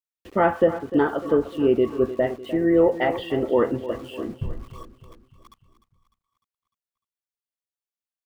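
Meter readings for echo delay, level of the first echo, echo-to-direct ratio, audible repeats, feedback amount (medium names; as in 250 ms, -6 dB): 301 ms, -14.0 dB, -12.5 dB, 4, 51%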